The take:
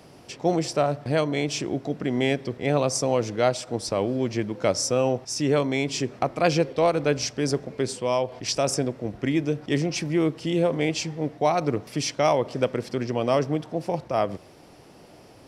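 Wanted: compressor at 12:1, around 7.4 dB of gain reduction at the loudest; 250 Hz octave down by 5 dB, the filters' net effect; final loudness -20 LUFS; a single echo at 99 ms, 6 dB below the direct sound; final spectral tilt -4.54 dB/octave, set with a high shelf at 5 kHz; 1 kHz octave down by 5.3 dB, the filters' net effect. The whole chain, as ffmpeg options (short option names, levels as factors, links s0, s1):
-af "equalizer=f=250:t=o:g=-6.5,equalizer=f=1000:t=o:g=-7.5,highshelf=f=5000:g=-5,acompressor=threshold=0.0447:ratio=12,aecho=1:1:99:0.501,volume=3.98"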